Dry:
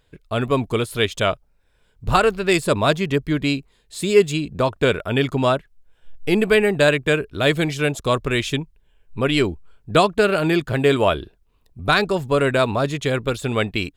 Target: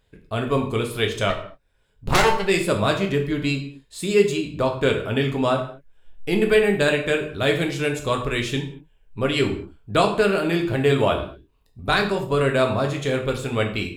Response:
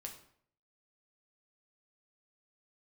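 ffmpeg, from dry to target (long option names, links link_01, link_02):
-filter_complex "[0:a]asplit=3[link_01][link_02][link_03];[link_01]afade=type=out:start_time=1.29:duration=0.02[link_04];[link_02]aeval=exprs='0.708*(cos(1*acos(clip(val(0)/0.708,-1,1)))-cos(1*PI/2))+0.1*(cos(3*acos(clip(val(0)/0.708,-1,1)))-cos(3*PI/2))+0.0631*(cos(5*acos(clip(val(0)/0.708,-1,1)))-cos(5*PI/2))+0.251*(cos(6*acos(clip(val(0)/0.708,-1,1)))-cos(6*PI/2))+0.02*(cos(7*acos(clip(val(0)/0.708,-1,1)))-cos(7*PI/2))':channel_layout=same,afade=type=in:start_time=1.29:duration=0.02,afade=type=out:start_time=2.44:duration=0.02[link_05];[link_03]afade=type=in:start_time=2.44:duration=0.02[link_06];[link_04][link_05][link_06]amix=inputs=3:normalize=0[link_07];[1:a]atrim=start_sample=2205,afade=type=out:start_time=0.29:duration=0.01,atrim=end_sample=13230[link_08];[link_07][link_08]afir=irnorm=-1:irlink=0,volume=1.5dB"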